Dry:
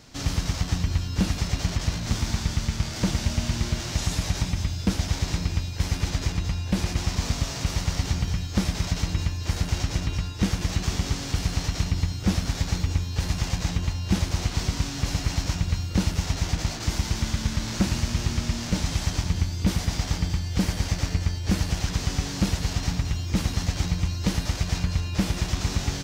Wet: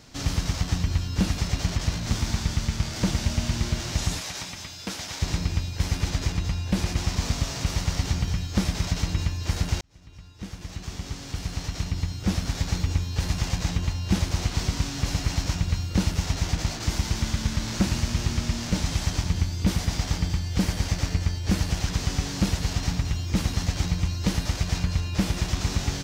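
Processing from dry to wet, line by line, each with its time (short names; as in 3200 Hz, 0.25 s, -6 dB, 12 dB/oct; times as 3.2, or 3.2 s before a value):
4.18–5.22 HPF 750 Hz 6 dB/oct
9.81–12.87 fade in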